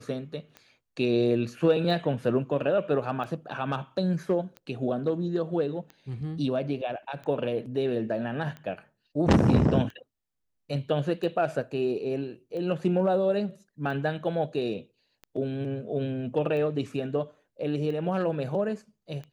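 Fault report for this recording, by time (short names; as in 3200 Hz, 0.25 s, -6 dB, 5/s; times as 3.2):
tick 45 rpm -28 dBFS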